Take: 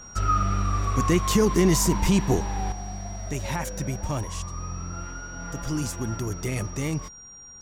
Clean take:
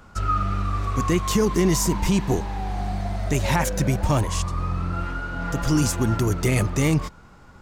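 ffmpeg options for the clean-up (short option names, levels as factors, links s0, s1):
-af "bandreject=f=5700:w=30,asetnsamples=n=441:p=0,asendcmd='2.72 volume volume 8dB',volume=1"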